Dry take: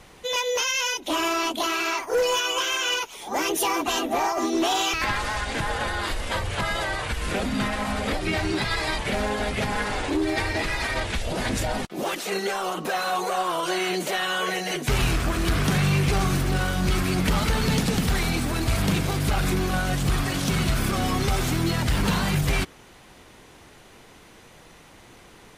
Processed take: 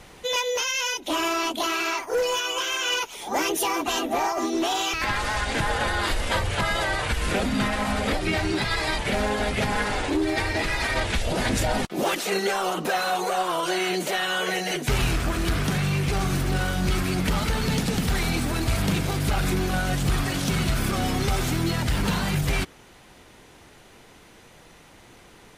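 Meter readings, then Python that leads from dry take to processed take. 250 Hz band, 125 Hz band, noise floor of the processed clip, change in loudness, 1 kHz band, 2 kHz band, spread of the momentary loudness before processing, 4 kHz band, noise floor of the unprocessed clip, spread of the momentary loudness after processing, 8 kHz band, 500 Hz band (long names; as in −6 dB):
−0.5 dB, −0.5 dB, −51 dBFS, 0.0 dB, 0.0 dB, +0.5 dB, 5 LU, 0.0 dB, −50 dBFS, 1 LU, −0.5 dB, 0.0 dB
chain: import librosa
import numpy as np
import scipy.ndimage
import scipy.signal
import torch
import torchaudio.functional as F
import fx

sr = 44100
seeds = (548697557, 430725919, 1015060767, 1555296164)

y = fx.notch(x, sr, hz=1100.0, q=27.0)
y = fx.rider(y, sr, range_db=10, speed_s=0.5)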